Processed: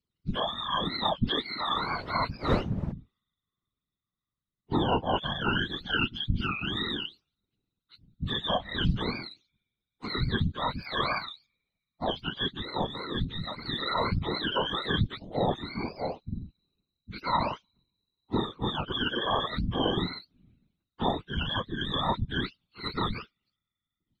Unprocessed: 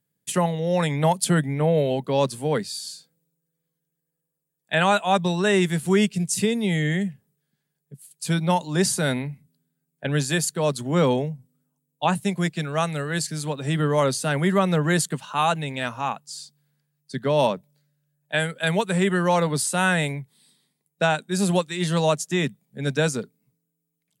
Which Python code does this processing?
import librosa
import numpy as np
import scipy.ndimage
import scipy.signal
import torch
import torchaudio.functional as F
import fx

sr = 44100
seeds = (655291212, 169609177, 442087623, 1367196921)

y = fx.octave_mirror(x, sr, pivot_hz=760.0)
y = fx.dmg_wind(y, sr, seeds[0], corner_hz=490.0, level_db=-26.0, at=(1.65, 2.91), fade=0.02)
y = fx.whisperise(y, sr, seeds[1])
y = y * 10.0 ** (-6.0 / 20.0)